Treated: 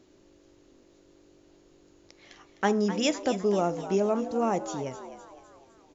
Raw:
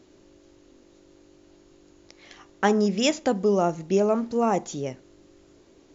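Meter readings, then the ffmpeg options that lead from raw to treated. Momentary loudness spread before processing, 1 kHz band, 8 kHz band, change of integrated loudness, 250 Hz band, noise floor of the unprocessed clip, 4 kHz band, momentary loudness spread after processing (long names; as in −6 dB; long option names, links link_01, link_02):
9 LU, −3.5 dB, can't be measured, −3.5 dB, −3.5 dB, −56 dBFS, −3.5 dB, 11 LU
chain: -filter_complex "[0:a]asplit=6[link_01][link_02][link_03][link_04][link_05][link_06];[link_02]adelay=255,afreqshift=88,volume=-12dB[link_07];[link_03]adelay=510,afreqshift=176,volume=-18.4dB[link_08];[link_04]adelay=765,afreqshift=264,volume=-24.8dB[link_09];[link_05]adelay=1020,afreqshift=352,volume=-31.1dB[link_10];[link_06]adelay=1275,afreqshift=440,volume=-37.5dB[link_11];[link_01][link_07][link_08][link_09][link_10][link_11]amix=inputs=6:normalize=0,volume=-4dB"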